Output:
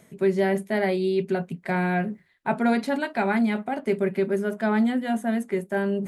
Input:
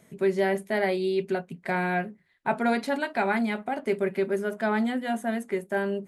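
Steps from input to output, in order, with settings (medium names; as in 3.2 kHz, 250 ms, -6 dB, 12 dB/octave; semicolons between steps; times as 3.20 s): dynamic bell 170 Hz, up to +6 dB, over -38 dBFS, Q 0.76; reverse; upward compressor, threshold -24 dBFS; reverse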